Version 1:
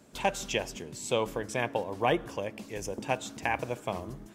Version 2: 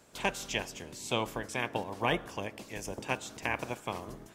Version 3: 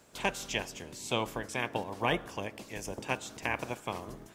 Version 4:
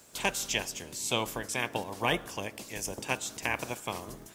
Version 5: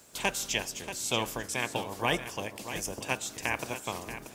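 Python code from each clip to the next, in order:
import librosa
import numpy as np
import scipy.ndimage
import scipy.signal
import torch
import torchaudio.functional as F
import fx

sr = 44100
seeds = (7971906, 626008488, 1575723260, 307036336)

y1 = fx.spec_clip(x, sr, under_db=12)
y1 = F.gain(torch.from_numpy(y1), -3.0).numpy()
y2 = fx.dmg_crackle(y1, sr, seeds[0], per_s=570.0, level_db=-64.0)
y3 = fx.high_shelf(y2, sr, hz=4300.0, db=11.0)
y4 = y3 + 10.0 ** (-11.0 / 20.0) * np.pad(y3, (int(633 * sr / 1000.0), 0))[:len(y3)]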